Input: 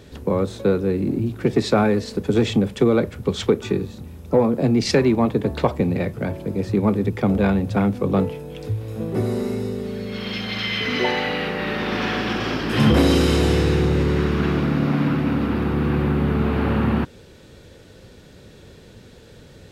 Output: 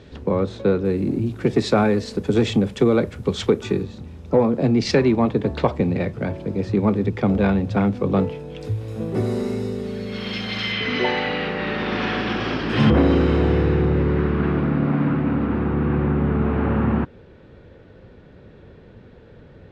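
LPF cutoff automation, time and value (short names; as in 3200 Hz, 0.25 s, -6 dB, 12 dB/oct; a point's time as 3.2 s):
4500 Hz
from 0.85 s 9300 Hz
from 3.83 s 5600 Hz
from 8.61 s 9200 Hz
from 10.72 s 4400 Hz
from 12.9 s 1900 Hz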